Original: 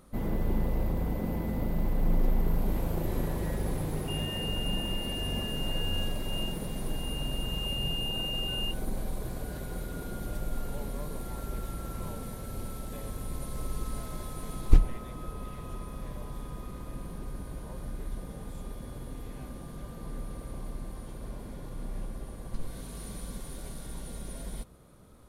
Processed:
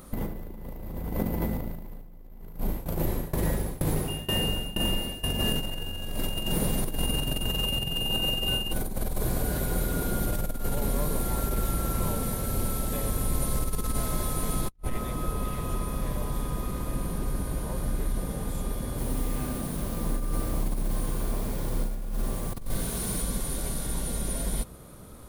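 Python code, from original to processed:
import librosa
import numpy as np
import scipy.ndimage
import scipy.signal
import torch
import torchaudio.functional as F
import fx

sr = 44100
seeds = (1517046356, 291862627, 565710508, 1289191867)

y = fx.tremolo_shape(x, sr, shape='saw_down', hz=2.1, depth_pct=95, at=(2.57, 5.23), fade=0.02)
y = fx.echo_crushed(y, sr, ms=91, feedback_pct=35, bits=9, wet_db=-3, at=(18.89, 23.22))
y = fx.high_shelf(y, sr, hz=10000.0, db=10.0)
y = fx.over_compress(y, sr, threshold_db=-33.0, ratio=-0.5)
y = y * librosa.db_to_amplitude(6.0)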